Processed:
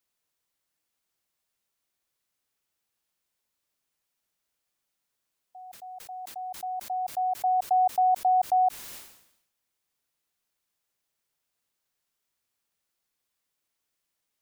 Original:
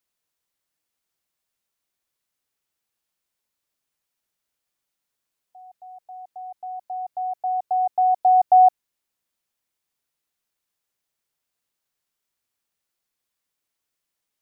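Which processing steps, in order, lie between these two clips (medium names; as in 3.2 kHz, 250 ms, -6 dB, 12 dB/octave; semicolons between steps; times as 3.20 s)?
peak limiter -18 dBFS, peak gain reduction 9.5 dB; decay stretcher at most 73 dB/s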